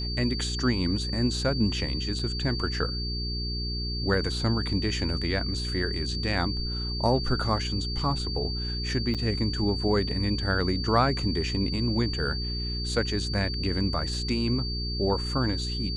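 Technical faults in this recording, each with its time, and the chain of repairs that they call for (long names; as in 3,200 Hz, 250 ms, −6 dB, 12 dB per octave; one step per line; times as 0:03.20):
mains hum 60 Hz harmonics 7 −32 dBFS
whistle 4,600 Hz −33 dBFS
0:02.19: drop-out 4.1 ms
0:09.14–0:09.15: drop-out 6.7 ms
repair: notch filter 4,600 Hz, Q 30
hum removal 60 Hz, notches 7
repair the gap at 0:02.19, 4.1 ms
repair the gap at 0:09.14, 6.7 ms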